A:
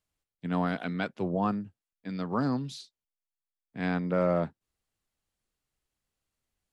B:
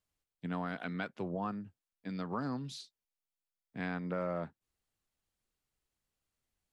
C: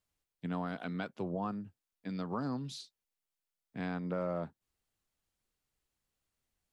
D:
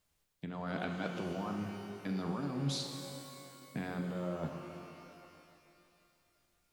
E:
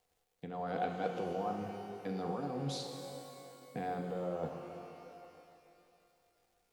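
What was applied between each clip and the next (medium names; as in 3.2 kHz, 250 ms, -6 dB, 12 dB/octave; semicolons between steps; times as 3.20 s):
dynamic bell 1.5 kHz, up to +4 dB, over -44 dBFS, Q 0.87; compression 2.5:1, threshold -34 dBFS, peak gain reduction 9 dB; trim -2.5 dB
dynamic bell 1.9 kHz, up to -6 dB, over -55 dBFS, Q 1.4; trim +1 dB
compressor with a negative ratio -41 dBFS, ratio -1; pitch-shifted reverb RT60 2.7 s, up +12 st, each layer -8 dB, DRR 4 dB; trim +2.5 dB
crackle 320 per s -63 dBFS; small resonant body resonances 490/730 Hz, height 16 dB, ringing for 50 ms; trim -4.5 dB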